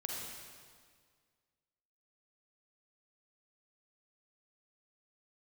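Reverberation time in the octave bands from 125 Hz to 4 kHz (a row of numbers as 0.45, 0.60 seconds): 2.0, 1.9, 1.9, 1.8, 1.7, 1.6 seconds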